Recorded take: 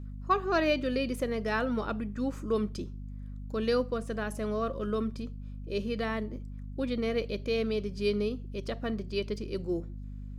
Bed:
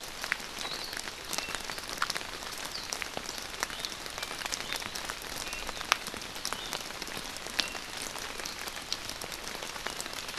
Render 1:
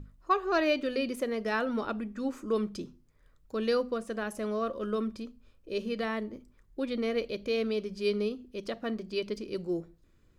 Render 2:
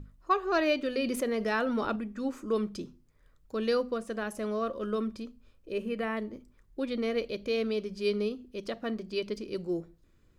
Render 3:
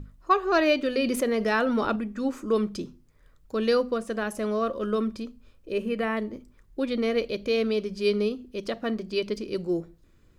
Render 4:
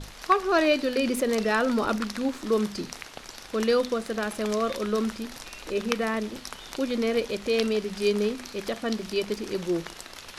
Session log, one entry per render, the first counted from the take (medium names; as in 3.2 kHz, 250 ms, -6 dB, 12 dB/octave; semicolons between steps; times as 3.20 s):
hum notches 50/100/150/200/250 Hz
1.04–1.96 s: level flattener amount 50%; 5.72–6.17 s: high-order bell 4.6 kHz -11.5 dB 1.1 oct
trim +5 dB
add bed -4.5 dB